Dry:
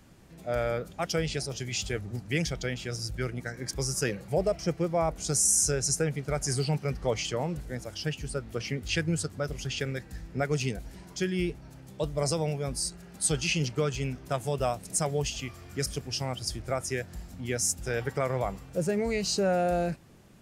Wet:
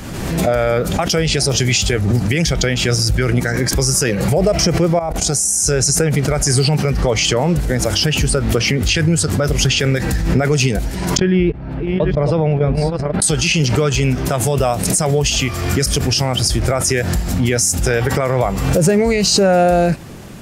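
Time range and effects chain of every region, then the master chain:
4.99–5.64 s: peaking EQ 740 Hz +7.5 dB 0.38 oct + level held to a coarse grid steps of 19 dB
11.17–13.22 s: chunks repeated in reverse 491 ms, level -7 dB + gate -34 dBFS, range -18 dB + distance through air 440 m
whole clip: compression 3:1, threshold -31 dBFS; loudness maximiser +26 dB; swell ahead of each attack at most 37 dB/s; trim -5 dB

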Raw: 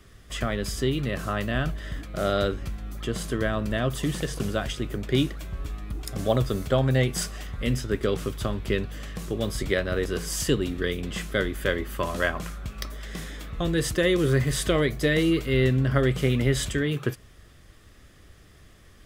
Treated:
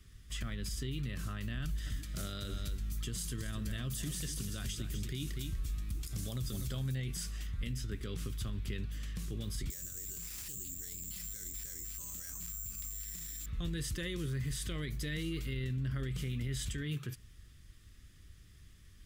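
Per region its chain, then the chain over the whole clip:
1.62–6.95 s: tone controls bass +1 dB, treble +9 dB + delay 244 ms -10.5 dB
9.70–13.46 s: band-stop 640 Hz, Q 9.6 + careless resampling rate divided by 6×, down none, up zero stuff + loudspeaker Doppler distortion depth 0.17 ms
whole clip: amplifier tone stack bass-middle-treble 6-0-2; peak limiter -38.5 dBFS; trim +9 dB

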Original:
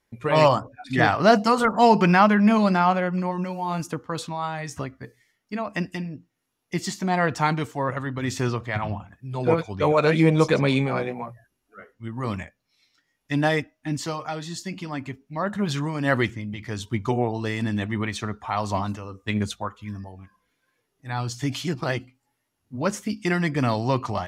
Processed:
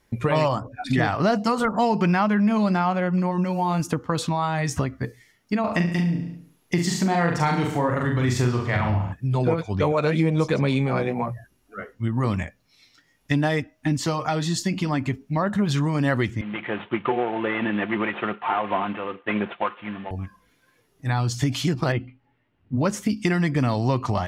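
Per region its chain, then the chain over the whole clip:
5.60–9.13 s: doubling 41 ms -3 dB + feedback delay 70 ms, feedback 47%, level -9.5 dB
16.41–20.11 s: CVSD coder 16 kbps + high-pass 360 Hz + comb 5.7 ms, depth 33%
21.92–22.77 s: low-pass 2.9 kHz 24 dB/octave + peaking EQ 990 Hz -3.5 dB 1.8 oct
whole clip: bass shelf 260 Hz +5.5 dB; compression 4:1, threshold -29 dBFS; trim +8.5 dB

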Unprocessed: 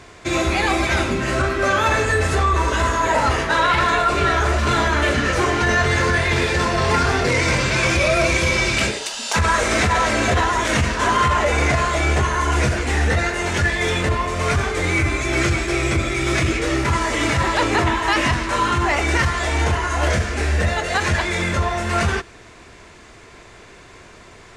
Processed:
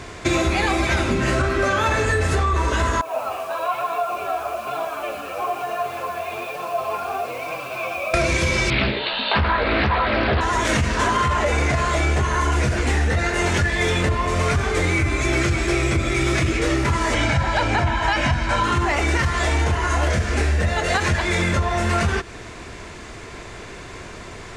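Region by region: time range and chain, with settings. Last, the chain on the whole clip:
3.01–8.14 s: flange 1.1 Hz, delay 5.9 ms, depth 5.3 ms, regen 0% + vowel filter a + word length cut 8-bit, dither none
8.70–10.41 s: Chebyshev low-pass 4.3 kHz, order 8 + doubling 15 ms -3.5 dB + loudspeaker Doppler distortion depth 0.57 ms
17.14–18.64 s: distance through air 57 m + comb 1.3 ms, depth 58%
whole clip: bass shelf 330 Hz +3 dB; compression, threshold -23 dBFS; trim +6 dB

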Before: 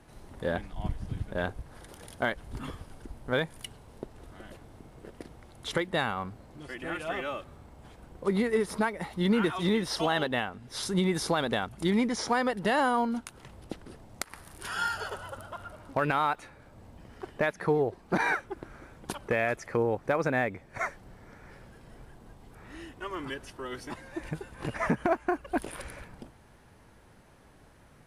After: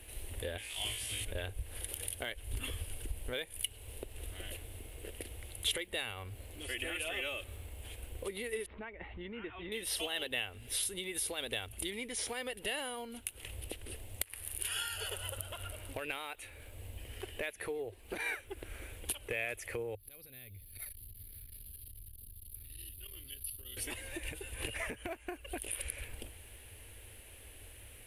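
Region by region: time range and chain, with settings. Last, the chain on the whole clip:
0.58–1.25 s: low-pass 7.6 kHz + tilt EQ +4.5 dB/octave + flutter echo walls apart 3.1 m, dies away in 0.35 s
8.66–9.72 s: Gaussian low-pass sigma 4.1 samples + peaking EQ 490 Hz -6.5 dB 0.7 oct
19.95–23.77 s: FFT filter 190 Hz 0 dB, 280 Hz -13 dB, 530 Hz -19 dB, 900 Hz -24 dB, 1.4 kHz -18 dB, 2 kHz -19 dB, 2.9 kHz -11 dB, 4.6 kHz +6 dB, 7 kHz -30 dB, 11 kHz +12 dB + compression 5:1, threshold -49 dBFS + transformer saturation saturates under 170 Hz
whole clip: resonant high shelf 7.6 kHz +14 dB, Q 1.5; compression 4:1, threshold -38 dBFS; FFT filter 100 Hz 0 dB, 150 Hz -24 dB, 250 Hz -13 dB, 470 Hz -5 dB, 920 Hz -14 dB, 1.3 kHz -13 dB, 2.8 kHz +9 dB, 5.4 kHz -4 dB; trim +6.5 dB

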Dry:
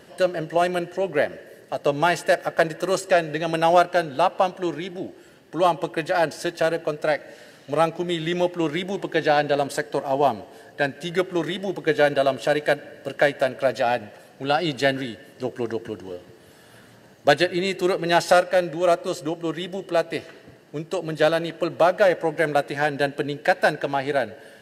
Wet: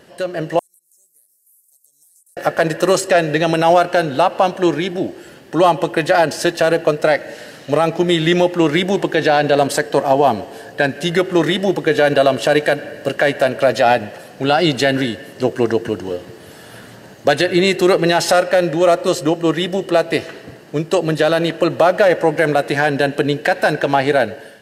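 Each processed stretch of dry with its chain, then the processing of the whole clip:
0.59–2.37 s: inverse Chebyshev high-pass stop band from 3 kHz, stop band 60 dB + compression 12:1, threshold -60 dBFS
whole clip: peak limiter -14 dBFS; level rider gain up to 10 dB; trim +1.5 dB

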